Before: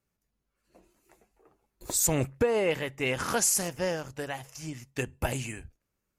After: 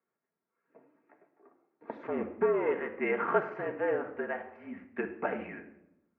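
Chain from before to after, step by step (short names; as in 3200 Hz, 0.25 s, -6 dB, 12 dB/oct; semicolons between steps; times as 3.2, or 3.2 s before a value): 2.03–2.92 tube stage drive 23 dB, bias 0.6; shoebox room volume 2600 m³, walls furnished, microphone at 1.8 m; mistuned SSB -50 Hz 300–2100 Hz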